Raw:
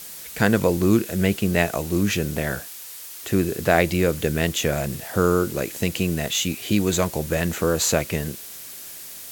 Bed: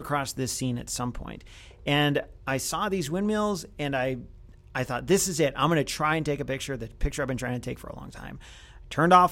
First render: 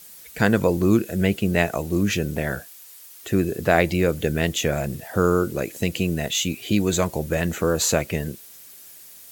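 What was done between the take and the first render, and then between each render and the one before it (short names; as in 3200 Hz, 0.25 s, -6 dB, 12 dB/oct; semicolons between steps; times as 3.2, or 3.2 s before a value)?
denoiser 9 dB, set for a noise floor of -38 dBFS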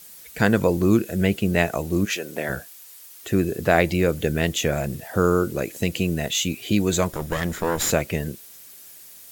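2.04–2.48 HPF 740 Hz -> 230 Hz; 7.12–7.91 minimum comb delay 0.56 ms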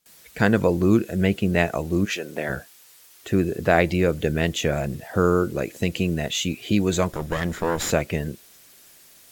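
gate with hold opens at -35 dBFS; high shelf 7500 Hz -9.5 dB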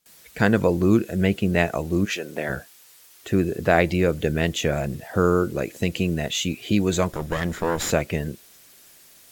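nothing audible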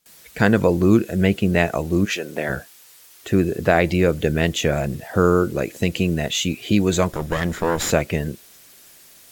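gain +3 dB; limiter -3 dBFS, peak gain reduction 2.5 dB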